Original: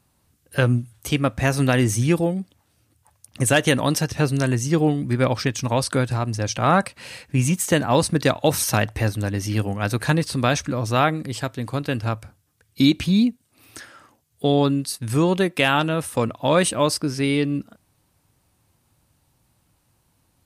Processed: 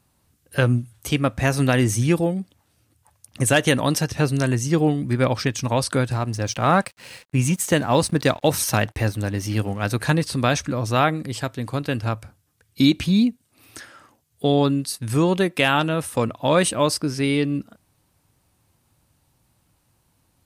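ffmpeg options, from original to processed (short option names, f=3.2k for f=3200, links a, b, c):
-filter_complex "[0:a]asettb=1/sr,asplit=3[a][b][c];[a]atrim=end=6.124[d];[b]atrim=start=6.12:end=9.9,asetpts=PTS-STARTPTS,afade=t=in:d=0.004:c=qsin,afade=t=out:st=3.776:d=0.004:c=qsin,aeval=exprs='sgn(val(0))*max(abs(val(0))-0.00501,0)':c=same[e];[c]atrim=start=9.896[f];[d][e]acrossfade=d=0.004:c1=hsin:c2=qsin[g];[g][f]acrossfade=d=0.004:c1=qsin:c2=hsin"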